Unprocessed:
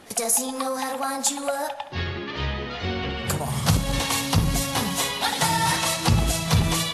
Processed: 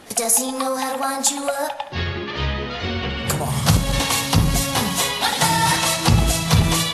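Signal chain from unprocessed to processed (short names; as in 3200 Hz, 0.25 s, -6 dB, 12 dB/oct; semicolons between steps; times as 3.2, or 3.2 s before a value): de-hum 92.58 Hz, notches 27; gain +4.5 dB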